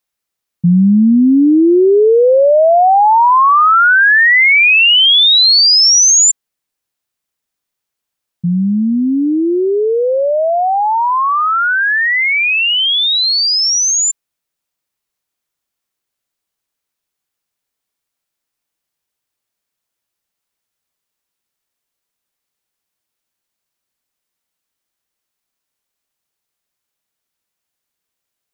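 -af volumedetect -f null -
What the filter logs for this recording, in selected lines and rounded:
mean_volume: -14.1 dB
max_volume: -5.3 dB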